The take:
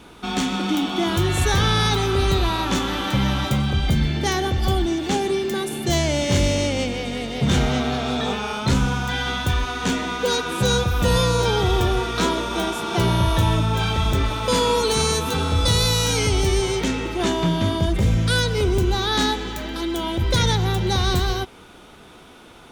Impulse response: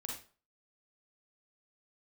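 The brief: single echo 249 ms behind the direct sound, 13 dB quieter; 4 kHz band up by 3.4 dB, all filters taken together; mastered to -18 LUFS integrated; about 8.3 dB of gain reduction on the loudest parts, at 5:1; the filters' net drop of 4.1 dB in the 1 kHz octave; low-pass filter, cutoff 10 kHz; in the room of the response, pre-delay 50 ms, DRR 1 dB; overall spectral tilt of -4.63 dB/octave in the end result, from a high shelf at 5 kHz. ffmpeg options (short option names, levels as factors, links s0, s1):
-filter_complex "[0:a]lowpass=10000,equalizer=f=1000:t=o:g=-5.5,equalizer=f=4000:t=o:g=5.5,highshelf=f=5000:g=-3,acompressor=threshold=0.0631:ratio=5,aecho=1:1:249:0.224,asplit=2[s0][s1];[1:a]atrim=start_sample=2205,adelay=50[s2];[s1][s2]afir=irnorm=-1:irlink=0,volume=1.06[s3];[s0][s3]amix=inputs=2:normalize=0,volume=2"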